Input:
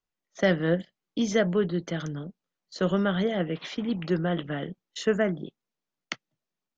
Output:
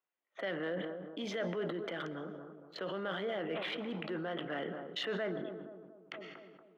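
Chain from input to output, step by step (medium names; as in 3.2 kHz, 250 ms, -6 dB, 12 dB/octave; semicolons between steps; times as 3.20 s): local Wiener filter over 9 samples; resonant high shelf 4.6 kHz -12.5 dB, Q 1.5; peak limiter -26 dBFS, peak gain reduction 16.5 dB; high-pass 390 Hz 12 dB/octave; bucket-brigade echo 234 ms, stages 2048, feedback 51%, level -12 dB; on a send at -19 dB: reverberation RT60 0.85 s, pre-delay 85 ms; on the sum: decay stretcher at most 32 dB/s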